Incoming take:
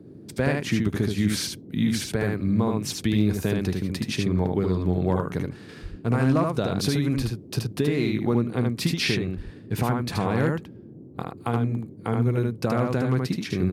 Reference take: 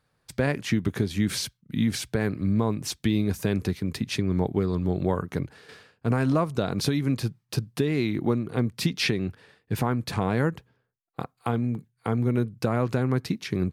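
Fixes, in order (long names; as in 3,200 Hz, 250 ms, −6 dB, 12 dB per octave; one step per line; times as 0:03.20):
clipped peaks rebuilt −11.5 dBFS
high-pass at the plosives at 0:05.82/0:07.16/0:09.36
noise reduction from a noise print 25 dB
echo removal 76 ms −3.5 dB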